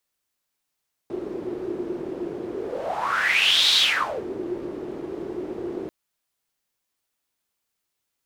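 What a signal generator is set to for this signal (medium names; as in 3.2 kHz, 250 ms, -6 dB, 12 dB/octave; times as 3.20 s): whoosh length 4.79 s, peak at 2.65 s, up 1.31 s, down 0.54 s, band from 360 Hz, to 3.8 kHz, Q 6.9, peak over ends 13.5 dB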